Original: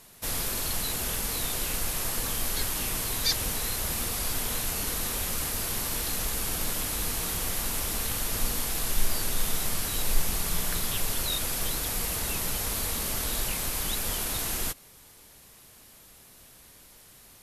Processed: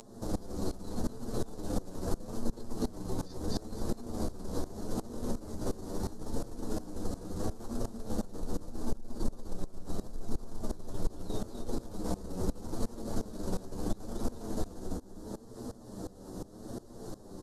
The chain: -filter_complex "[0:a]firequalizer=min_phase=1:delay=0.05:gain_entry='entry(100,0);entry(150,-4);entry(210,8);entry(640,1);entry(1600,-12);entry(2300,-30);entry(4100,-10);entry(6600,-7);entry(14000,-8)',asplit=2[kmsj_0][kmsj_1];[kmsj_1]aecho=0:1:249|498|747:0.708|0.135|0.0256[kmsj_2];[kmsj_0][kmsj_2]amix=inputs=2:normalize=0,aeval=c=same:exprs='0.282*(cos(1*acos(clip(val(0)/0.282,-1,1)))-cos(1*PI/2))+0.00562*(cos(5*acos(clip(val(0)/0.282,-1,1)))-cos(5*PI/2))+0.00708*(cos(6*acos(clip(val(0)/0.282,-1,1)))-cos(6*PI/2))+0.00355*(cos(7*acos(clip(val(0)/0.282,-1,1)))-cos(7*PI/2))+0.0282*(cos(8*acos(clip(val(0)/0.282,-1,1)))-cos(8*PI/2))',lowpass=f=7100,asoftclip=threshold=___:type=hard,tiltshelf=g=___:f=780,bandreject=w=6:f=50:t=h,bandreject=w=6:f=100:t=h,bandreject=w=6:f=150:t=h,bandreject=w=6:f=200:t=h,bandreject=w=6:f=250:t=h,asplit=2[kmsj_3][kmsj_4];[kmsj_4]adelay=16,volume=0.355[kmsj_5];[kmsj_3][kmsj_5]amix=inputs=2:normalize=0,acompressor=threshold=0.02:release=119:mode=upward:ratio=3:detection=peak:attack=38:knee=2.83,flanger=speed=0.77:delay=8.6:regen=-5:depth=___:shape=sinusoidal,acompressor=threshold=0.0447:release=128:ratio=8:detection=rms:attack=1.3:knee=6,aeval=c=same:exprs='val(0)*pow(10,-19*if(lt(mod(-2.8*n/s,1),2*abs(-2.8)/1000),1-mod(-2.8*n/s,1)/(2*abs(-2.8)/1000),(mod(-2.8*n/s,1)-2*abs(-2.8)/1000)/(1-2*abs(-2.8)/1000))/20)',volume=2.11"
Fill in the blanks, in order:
0.178, 3.5, 2